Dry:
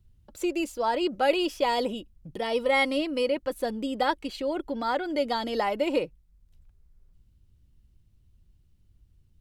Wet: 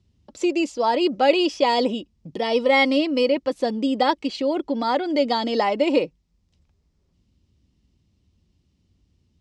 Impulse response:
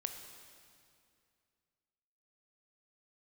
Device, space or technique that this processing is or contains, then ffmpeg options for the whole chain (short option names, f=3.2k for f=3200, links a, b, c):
car door speaker: -af "highpass=100,equalizer=f=120:t=q:w=4:g=-9,equalizer=f=260:t=q:w=4:g=4,equalizer=f=1.5k:t=q:w=4:g=-7,equalizer=f=5.2k:t=q:w=4:g=4,lowpass=f=7.2k:w=0.5412,lowpass=f=7.2k:w=1.3066,volume=6dB"